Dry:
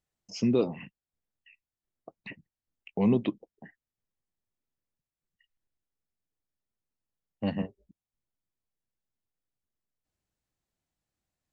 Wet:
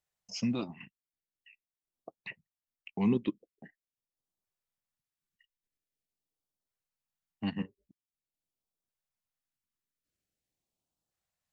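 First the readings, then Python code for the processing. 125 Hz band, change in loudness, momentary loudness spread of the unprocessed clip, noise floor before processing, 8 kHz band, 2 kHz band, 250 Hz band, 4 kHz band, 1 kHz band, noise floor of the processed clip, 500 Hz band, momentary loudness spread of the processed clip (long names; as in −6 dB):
−4.5 dB, −5.5 dB, 21 LU, below −85 dBFS, can't be measured, −0.5 dB, −4.0 dB, −0.5 dB, −4.0 dB, below −85 dBFS, −9.5 dB, 23 LU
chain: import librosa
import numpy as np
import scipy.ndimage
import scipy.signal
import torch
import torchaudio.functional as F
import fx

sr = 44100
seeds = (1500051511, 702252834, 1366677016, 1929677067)

y = fx.low_shelf(x, sr, hz=140.0, db=-9.0)
y = fx.filter_lfo_notch(y, sr, shape='saw_up', hz=0.45, low_hz=240.0, high_hz=2400.0, q=0.98)
y = fx.transient(y, sr, attack_db=1, sustain_db=-7)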